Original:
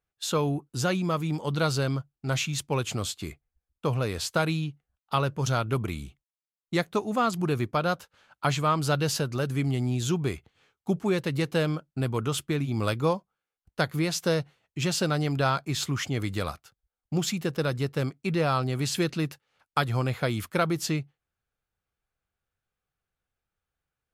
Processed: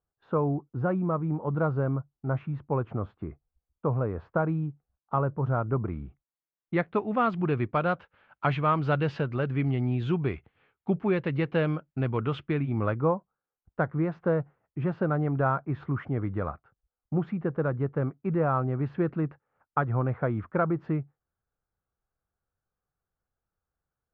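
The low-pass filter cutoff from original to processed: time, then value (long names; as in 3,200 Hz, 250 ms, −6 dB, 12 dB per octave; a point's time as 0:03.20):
low-pass filter 24 dB per octave
0:05.71 1,300 Hz
0:07.07 2,600 Hz
0:12.52 2,600 Hz
0:13.07 1,500 Hz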